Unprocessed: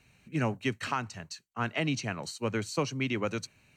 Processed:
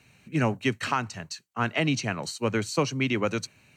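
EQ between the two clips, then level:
high-pass filter 78 Hz
+5.0 dB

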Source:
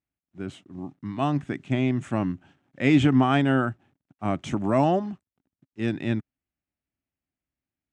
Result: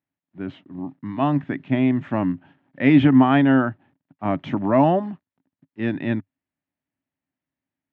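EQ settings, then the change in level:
loudspeaker in its box 100–3,800 Hz, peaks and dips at 100 Hz +3 dB, 160 Hz +5 dB, 270 Hz +7 dB, 600 Hz +5 dB, 940 Hz +7 dB, 1,800 Hz +6 dB
0.0 dB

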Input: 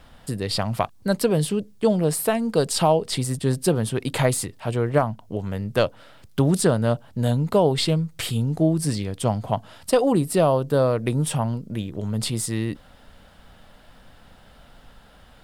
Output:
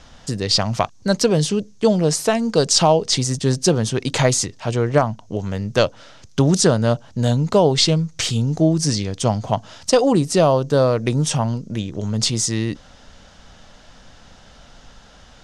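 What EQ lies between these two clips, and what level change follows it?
low-pass with resonance 6,200 Hz, resonance Q 5.2
+3.5 dB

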